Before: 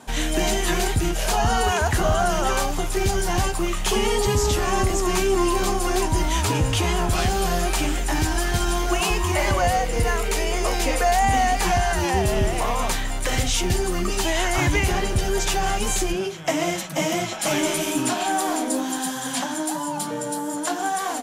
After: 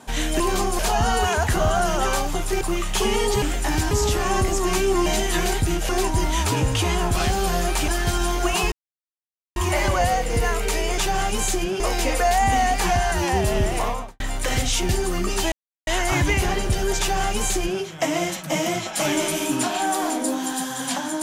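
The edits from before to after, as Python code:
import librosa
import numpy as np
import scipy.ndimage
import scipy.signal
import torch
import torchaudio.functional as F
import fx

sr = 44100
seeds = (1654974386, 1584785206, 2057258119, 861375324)

y = fx.studio_fade_out(x, sr, start_s=12.62, length_s=0.39)
y = fx.edit(y, sr, fx.swap(start_s=0.4, length_s=0.83, other_s=5.48, other_length_s=0.39),
    fx.cut(start_s=3.05, length_s=0.47),
    fx.move(start_s=7.86, length_s=0.49, to_s=4.33),
    fx.insert_silence(at_s=9.19, length_s=0.84),
    fx.insert_silence(at_s=14.33, length_s=0.35),
    fx.duplicate(start_s=15.46, length_s=0.82, to_s=10.61), tone=tone)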